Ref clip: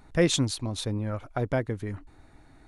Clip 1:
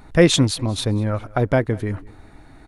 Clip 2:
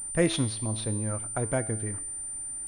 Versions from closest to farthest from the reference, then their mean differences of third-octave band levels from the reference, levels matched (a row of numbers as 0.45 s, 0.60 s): 1, 2; 1.0 dB, 4.5 dB